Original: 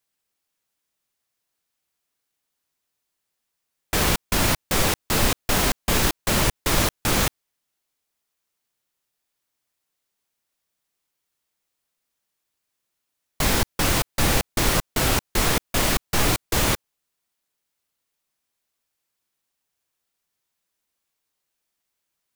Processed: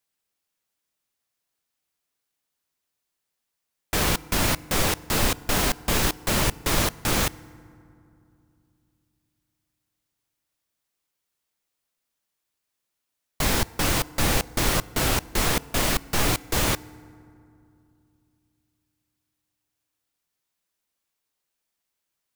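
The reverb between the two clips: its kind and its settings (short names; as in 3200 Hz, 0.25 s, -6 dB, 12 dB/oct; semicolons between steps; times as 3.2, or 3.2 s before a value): FDN reverb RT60 2.6 s, low-frequency decay 1.4×, high-frequency decay 0.45×, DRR 20 dB; gain -2 dB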